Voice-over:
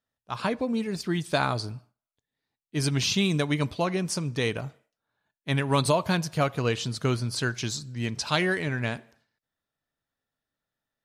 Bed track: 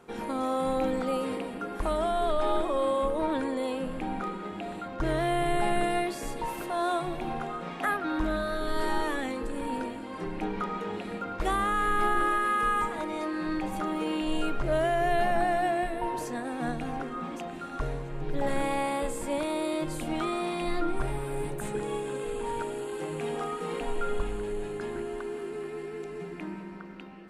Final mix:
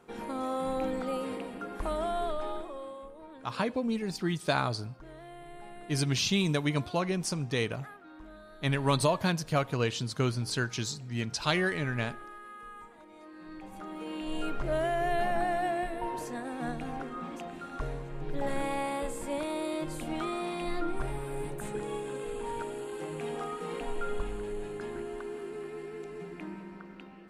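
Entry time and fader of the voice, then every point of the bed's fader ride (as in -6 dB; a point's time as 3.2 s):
3.15 s, -3.0 dB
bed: 2.19 s -4 dB
3.16 s -20.5 dB
13.05 s -20.5 dB
14.52 s -3.5 dB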